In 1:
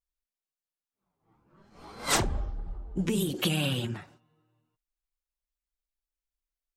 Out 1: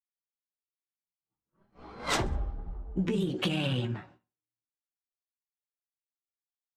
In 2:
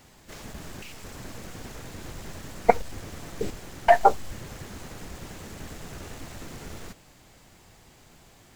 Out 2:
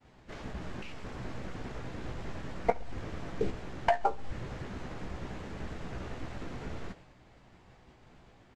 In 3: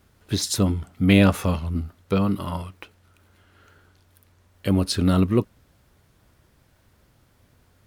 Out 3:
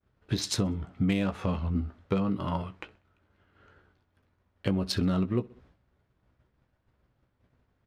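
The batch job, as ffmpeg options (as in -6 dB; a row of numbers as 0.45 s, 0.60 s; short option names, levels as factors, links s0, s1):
-filter_complex "[0:a]agate=range=0.0224:threshold=0.00316:ratio=3:detection=peak,asplit=2[s0][s1];[s1]adelay=16,volume=0.376[s2];[s0][s2]amix=inputs=2:normalize=0,adynamicsmooth=sensitivity=2:basefreq=3200,aecho=1:1:64|128|192:0.0631|0.0259|0.0106,aresample=32000,aresample=44100,acompressor=threshold=0.0631:ratio=6"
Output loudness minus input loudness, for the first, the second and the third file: -2.0 LU, -12.5 LU, -7.5 LU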